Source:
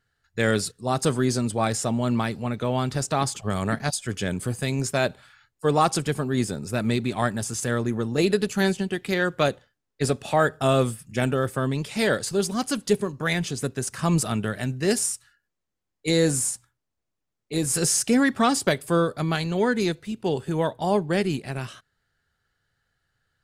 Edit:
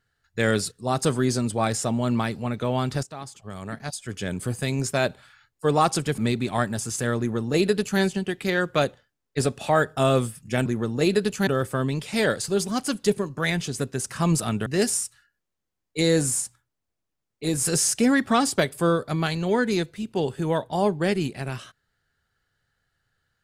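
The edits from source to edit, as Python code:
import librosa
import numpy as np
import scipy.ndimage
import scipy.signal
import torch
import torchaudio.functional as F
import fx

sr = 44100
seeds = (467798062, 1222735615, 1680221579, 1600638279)

y = fx.edit(x, sr, fx.fade_in_from(start_s=3.03, length_s=1.48, curve='qua', floor_db=-14.0),
    fx.cut(start_s=6.18, length_s=0.64),
    fx.duplicate(start_s=7.83, length_s=0.81, to_s=11.3),
    fx.cut(start_s=14.49, length_s=0.26), tone=tone)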